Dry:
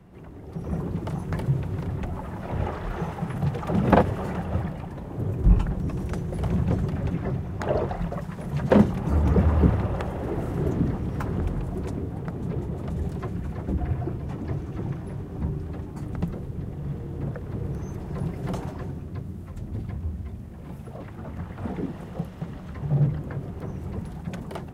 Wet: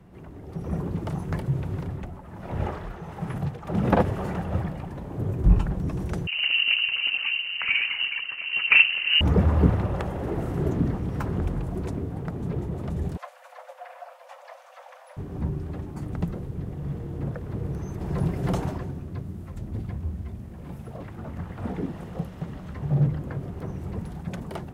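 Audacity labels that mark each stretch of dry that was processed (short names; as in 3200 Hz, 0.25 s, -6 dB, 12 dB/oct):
1.380000	3.980000	tremolo triangle 0.73 Hz -> 2.3 Hz, depth 70%
6.270000	9.210000	inverted band carrier 2900 Hz
13.170000	15.170000	Chebyshev high-pass 510 Hz, order 10
18.010000	18.780000	gain +4 dB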